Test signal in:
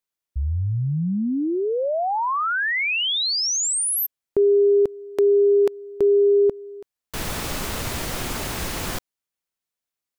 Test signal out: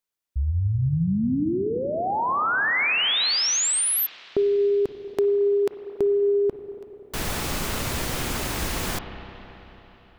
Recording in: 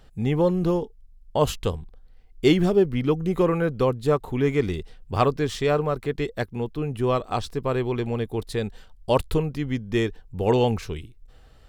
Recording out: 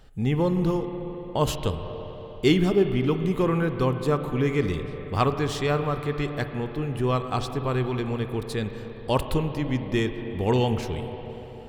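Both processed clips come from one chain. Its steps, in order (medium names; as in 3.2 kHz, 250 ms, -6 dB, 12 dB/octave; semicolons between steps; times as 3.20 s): spring tank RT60 3.8 s, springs 31/48/55 ms, chirp 65 ms, DRR 7.5 dB; dynamic bell 550 Hz, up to -5 dB, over -33 dBFS, Q 1.3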